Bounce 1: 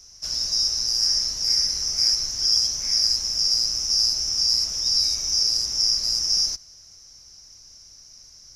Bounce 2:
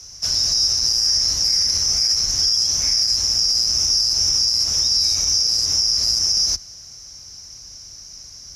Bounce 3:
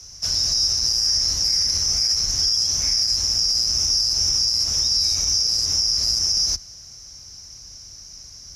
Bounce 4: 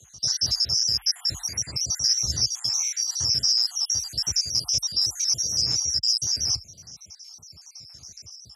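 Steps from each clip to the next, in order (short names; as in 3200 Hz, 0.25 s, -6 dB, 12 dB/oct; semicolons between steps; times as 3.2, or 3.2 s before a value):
limiter -18 dBFS, peak gain reduction 10.5 dB; frequency shift +26 Hz; gain +8.5 dB
low shelf 150 Hz +4 dB; gain -2 dB
random spectral dropouts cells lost 62%; frequency shift +36 Hz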